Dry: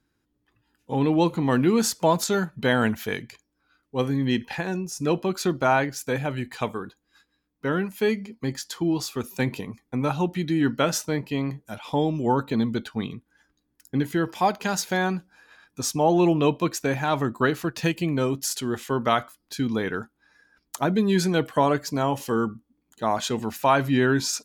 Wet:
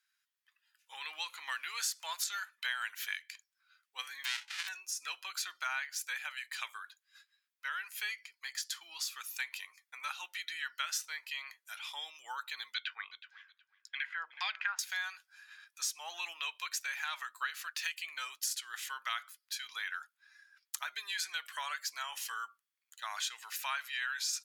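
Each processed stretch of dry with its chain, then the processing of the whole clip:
0:04.24–0:04.67: spectral envelope flattened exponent 0.1 + low-pass filter 3,800 Hz + hum removal 70.91 Hz, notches 14
0:12.74–0:14.79: auto-filter low-pass saw down 1.8 Hz 390–4,900 Hz + parametric band 2,400 Hz +5 dB 1.7 octaves + repeating echo 369 ms, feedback 19%, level −19 dB
whole clip: high-pass filter 1,500 Hz 24 dB per octave; downward compressor 2.5 to 1, threshold −36 dBFS

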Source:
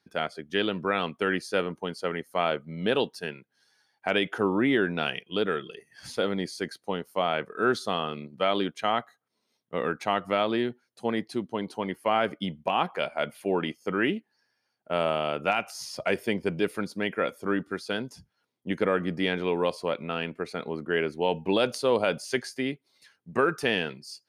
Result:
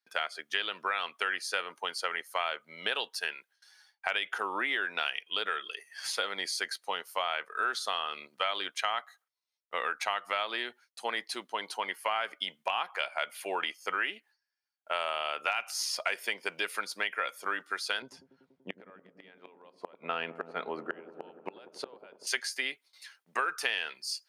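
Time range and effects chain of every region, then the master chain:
0:18.02–0:22.27: spectral tilt −4.5 dB per octave + gate with flip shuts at −13 dBFS, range −30 dB + delay with a low-pass on its return 96 ms, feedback 84%, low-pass 670 Hz, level −14 dB
whole clip: noise gate with hold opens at −57 dBFS; high-pass filter 1,100 Hz 12 dB per octave; downward compressor 4 to 1, threshold −36 dBFS; level +7.5 dB

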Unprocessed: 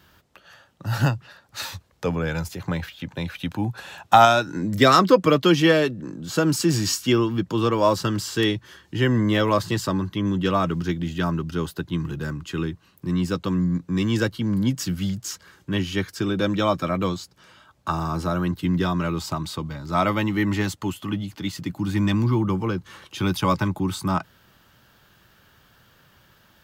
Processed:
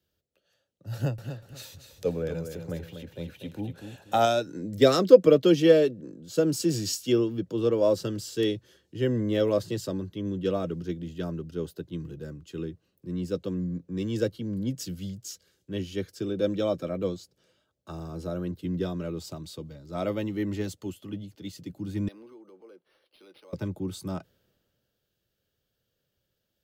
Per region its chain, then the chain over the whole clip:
0:00.94–0:04.21: parametric band 4,700 Hz −3.5 dB + upward compression, threshold −29 dBFS + repeating echo 242 ms, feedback 38%, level −6.5 dB
0:22.08–0:23.53: Bessel high-pass filter 510 Hz, order 4 + downward compressor 3 to 1, threshold −36 dBFS + linearly interpolated sample-rate reduction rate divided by 6×
whole clip: octave-band graphic EQ 500/1,000/2,000 Hz +11/−12/−4 dB; multiband upward and downward expander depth 40%; level −9 dB

